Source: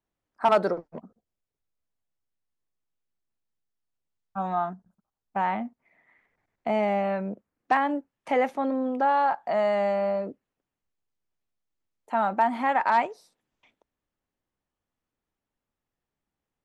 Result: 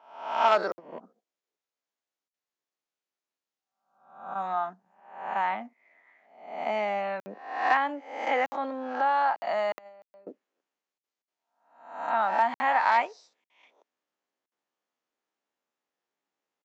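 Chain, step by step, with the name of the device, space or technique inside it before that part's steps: spectral swells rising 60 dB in 0.64 s; 9.78–10.27 gate -21 dBFS, range -25 dB; call with lost packets (HPF 120 Hz 12 dB/oct; downsampling 16000 Hz; packet loss packets of 60 ms random); HPF 370 Hz 12 dB/oct; dynamic EQ 430 Hz, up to -6 dB, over -38 dBFS, Q 0.94

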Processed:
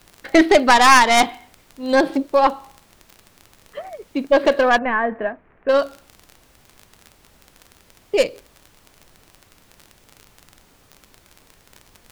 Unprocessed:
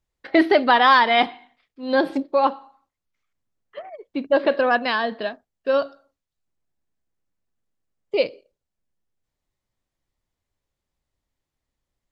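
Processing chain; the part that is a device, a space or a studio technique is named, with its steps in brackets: record under a worn stylus (tracing distortion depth 0.15 ms; crackle 28/s -31 dBFS; pink noise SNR 33 dB); 4.78–5.69 steep low-pass 2200 Hz 36 dB/oct; gain +3.5 dB

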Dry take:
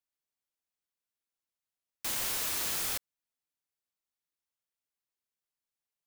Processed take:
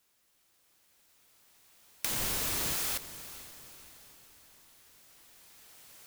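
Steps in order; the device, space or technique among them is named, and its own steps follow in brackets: cheap recorder with automatic gain (white noise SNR 32 dB; recorder AGC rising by 6.2 dB/s); 2.11–2.73 low shelf 350 Hz +11 dB; diffused feedback echo 0.451 s, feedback 52%, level -14 dB

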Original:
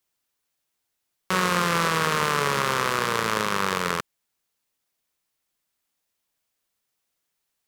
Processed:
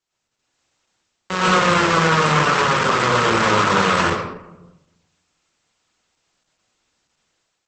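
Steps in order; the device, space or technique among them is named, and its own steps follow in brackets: speakerphone in a meeting room (reverb RT60 0.90 s, pre-delay 90 ms, DRR -9 dB; AGC gain up to 8 dB; gain -1 dB; Opus 12 kbps 48000 Hz)

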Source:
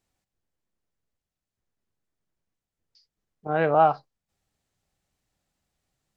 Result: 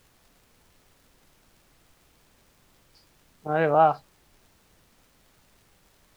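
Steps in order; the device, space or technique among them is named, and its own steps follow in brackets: vinyl LP (crackle; pink noise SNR 30 dB)

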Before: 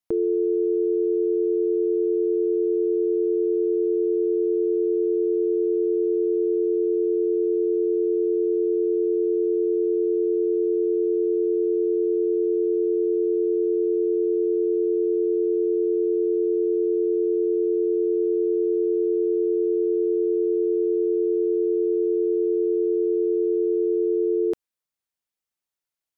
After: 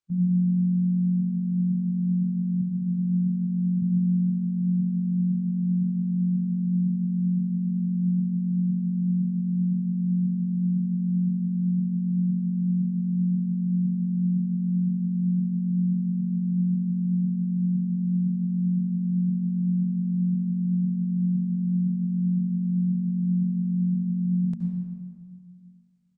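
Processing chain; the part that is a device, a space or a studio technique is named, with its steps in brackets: 2.62–3.83 HPF 250 Hz 12 dB/oct; monster voice (pitch shift -11.5 st; formant shift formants -3 st; low shelf 230 Hz +4 dB; reverb RT60 2.0 s, pre-delay 68 ms, DRR 1.5 dB); gain -5 dB

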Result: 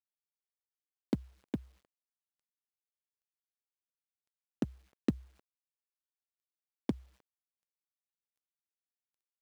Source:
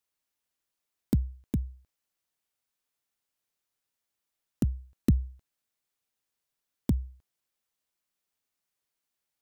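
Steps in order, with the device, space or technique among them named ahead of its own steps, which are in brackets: phone line with mismatched companding (BPF 330–3500 Hz; G.711 law mismatch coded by mu); gain +1.5 dB

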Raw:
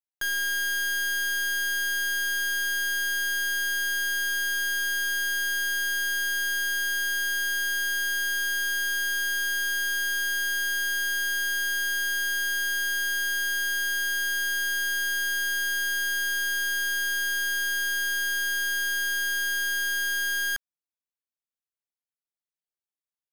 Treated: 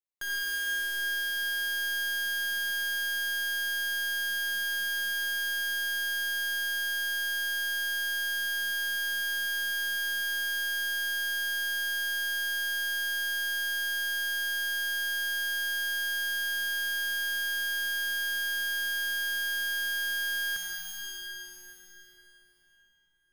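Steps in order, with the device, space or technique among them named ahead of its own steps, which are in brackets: cathedral (reverb RT60 4.4 s, pre-delay 56 ms, DRR -4.5 dB); gain -7 dB

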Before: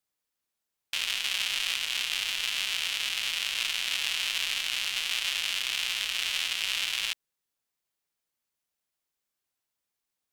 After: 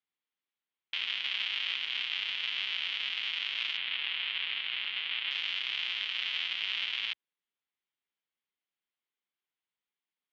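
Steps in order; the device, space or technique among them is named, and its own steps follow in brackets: HPF 120 Hz 6 dB/oct; 3.77–5.31 LPF 3800 Hz 24 dB/oct; guitar cabinet (speaker cabinet 75–3800 Hz, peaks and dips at 88 Hz -8 dB, 130 Hz -4 dB, 620 Hz -7 dB, 2100 Hz +4 dB, 3200 Hz +5 dB); gain -5.5 dB

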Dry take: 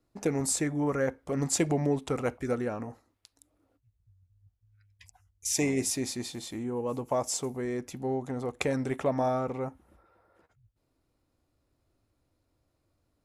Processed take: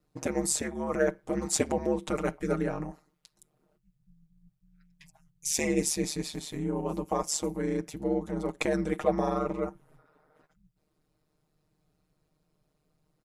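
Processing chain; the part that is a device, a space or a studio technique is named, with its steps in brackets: ring-modulated robot voice (ring modulator 75 Hz; comb 6.5 ms, depth 70%); gain +2 dB

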